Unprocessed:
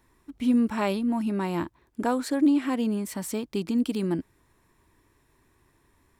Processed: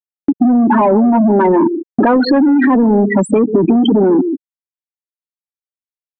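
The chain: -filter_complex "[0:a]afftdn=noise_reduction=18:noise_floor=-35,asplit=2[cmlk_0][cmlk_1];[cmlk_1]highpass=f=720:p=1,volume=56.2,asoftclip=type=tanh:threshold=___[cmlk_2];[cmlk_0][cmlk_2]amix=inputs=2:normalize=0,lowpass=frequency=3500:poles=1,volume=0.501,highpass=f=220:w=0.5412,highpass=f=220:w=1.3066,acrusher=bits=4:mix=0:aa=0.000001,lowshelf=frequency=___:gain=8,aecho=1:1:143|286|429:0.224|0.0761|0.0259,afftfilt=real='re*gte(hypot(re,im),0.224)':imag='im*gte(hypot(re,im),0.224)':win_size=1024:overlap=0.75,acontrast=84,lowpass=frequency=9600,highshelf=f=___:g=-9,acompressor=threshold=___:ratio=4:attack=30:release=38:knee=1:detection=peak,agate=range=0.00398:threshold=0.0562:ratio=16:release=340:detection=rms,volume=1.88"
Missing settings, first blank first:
0.224, 370, 5000, 0.126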